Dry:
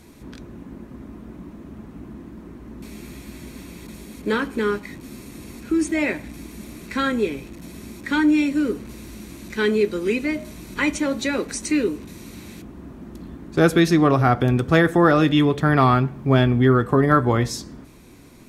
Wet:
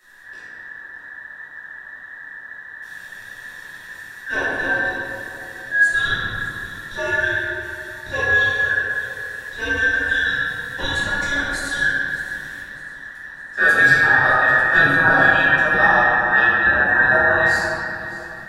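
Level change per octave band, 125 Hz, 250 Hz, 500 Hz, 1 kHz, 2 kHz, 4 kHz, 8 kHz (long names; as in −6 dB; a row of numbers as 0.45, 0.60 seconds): −10.5, −12.5, −4.5, +2.5, +14.5, +3.0, −2.5 decibels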